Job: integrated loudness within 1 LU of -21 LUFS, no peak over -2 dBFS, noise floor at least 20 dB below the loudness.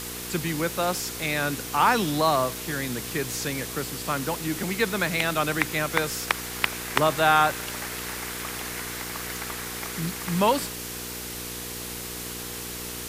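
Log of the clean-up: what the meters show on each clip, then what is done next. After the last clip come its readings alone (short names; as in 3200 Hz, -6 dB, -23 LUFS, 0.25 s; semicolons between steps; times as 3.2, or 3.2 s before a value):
hum 60 Hz; harmonics up to 480 Hz; hum level -38 dBFS; noise floor -35 dBFS; noise floor target -47 dBFS; loudness -26.5 LUFS; peak -3.0 dBFS; loudness target -21.0 LUFS
-> de-hum 60 Hz, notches 8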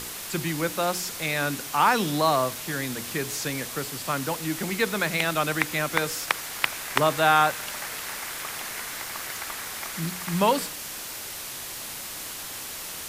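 hum none; noise floor -37 dBFS; noise floor target -47 dBFS
-> noise print and reduce 10 dB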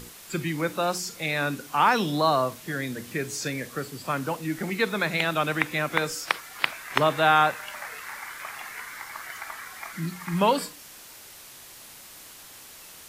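noise floor -47 dBFS; loudness -27.0 LUFS; peak -4.0 dBFS; loudness target -21.0 LUFS
-> gain +6 dB; limiter -2 dBFS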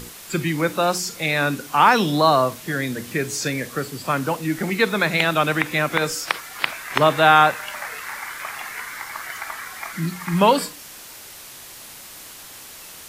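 loudness -21.0 LUFS; peak -2.0 dBFS; noise floor -41 dBFS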